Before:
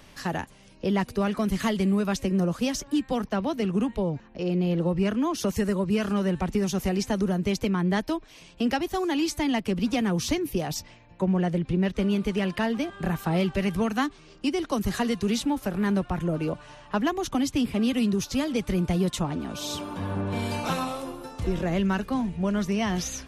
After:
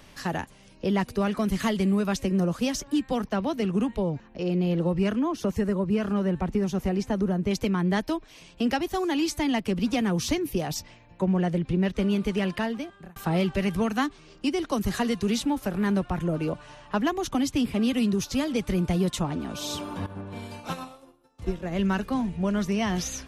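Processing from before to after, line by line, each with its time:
0:05.19–0:07.51: high-shelf EQ 2,400 Hz −10 dB
0:12.50–0:13.16: fade out
0:20.06–0:21.79: expander for the loud parts 2.5 to 1, over −40 dBFS

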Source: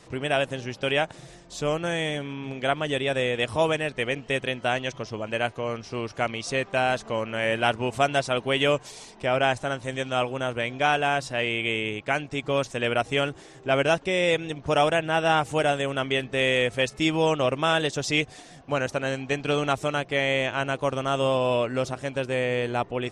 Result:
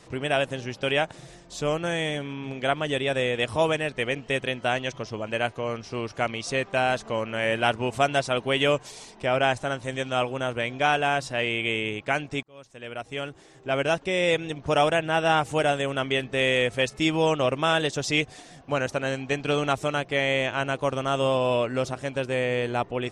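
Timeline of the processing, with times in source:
0:12.43–0:14.31: fade in

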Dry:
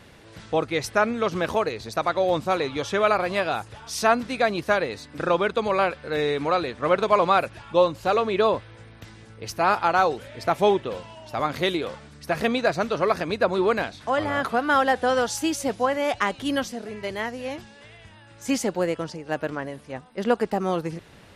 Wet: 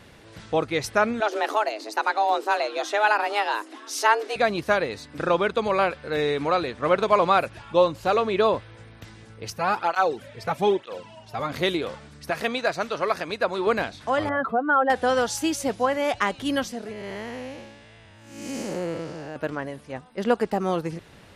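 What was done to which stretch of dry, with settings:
0:01.20–0:04.36: frequency shifter +210 Hz
0:09.50–0:11.52: through-zero flanger with one copy inverted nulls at 1.1 Hz, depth 3.7 ms
0:12.30–0:13.67: low-shelf EQ 390 Hz −9.5 dB
0:14.29–0:14.90: expanding power law on the bin magnitudes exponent 1.9
0:16.92–0:19.36: spectrum smeared in time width 274 ms

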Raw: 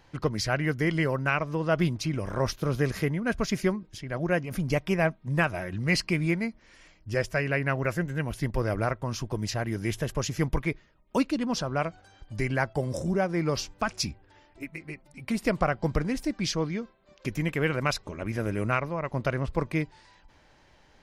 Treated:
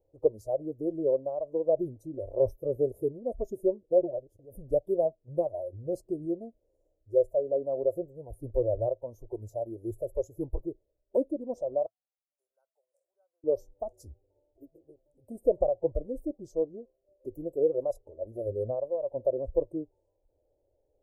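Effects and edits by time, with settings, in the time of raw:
0:03.91–0:04.39: reverse
0:11.86–0:13.44: four-pole ladder high-pass 1,500 Hz, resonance 85%
whole clip: elliptic band-stop filter 500–6,800 Hz, stop band 80 dB; noise reduction from a noise print of the clip's start 12 dB; drawn EQ curve 110 Hz 0 dB, 180 Hz −17 dB, 320 Hz +1 dB, 570 Hz +14 dB, 1,200 Hz +8 dB, 5,600 Hz −20 dB, 13,000 Hz −7 dB; level −3 dB

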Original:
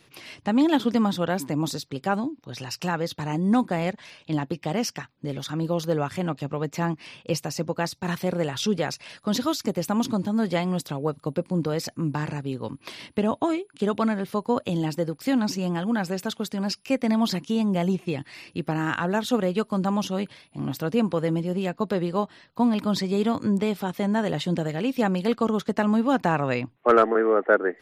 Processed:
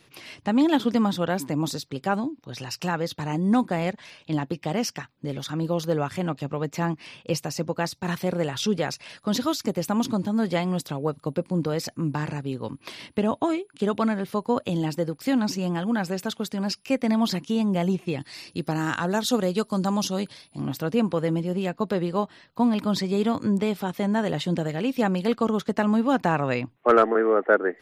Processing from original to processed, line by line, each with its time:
0:18.20–0:20.62: high shelf with overshoot 3,500 Hz +6 dB, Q 1.5

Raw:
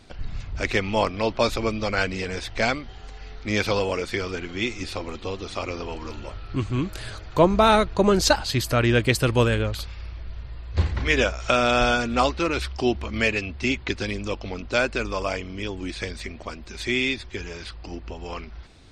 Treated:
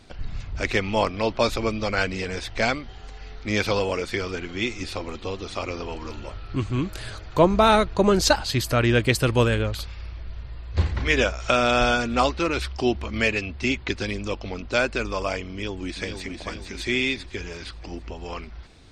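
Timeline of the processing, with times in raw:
0:15.51–0:16.30: delay throw 450 ms, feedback 50%, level −6 dB

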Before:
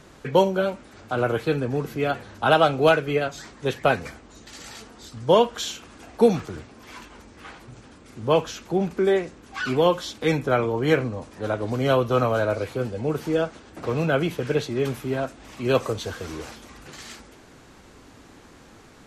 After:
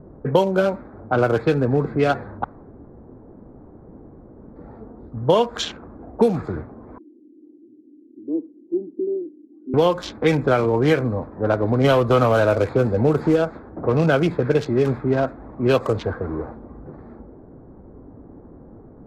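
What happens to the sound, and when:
0:02.44–0:04.56: fill with room tone
0:06.98–0:09.74: flat-topped band-pass 310 Hz, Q 4.3
0:11.84–0:13.36: leveller curve on the samples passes 1
whole clip: adaptive Wiener filter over 15 samples; low-pass that shuts in the quiet parts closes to 500 Hz, open at −18.5 dBFS; downward compressor, threshold −21 dBFS; level +8 dB

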